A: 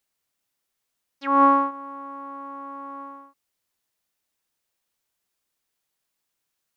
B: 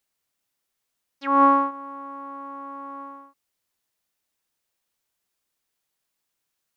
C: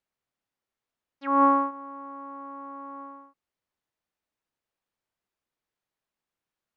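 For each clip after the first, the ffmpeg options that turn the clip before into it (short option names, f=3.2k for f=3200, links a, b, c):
-af anull
-af "lowpass=f=1.6k:p=1,volume=-2dB"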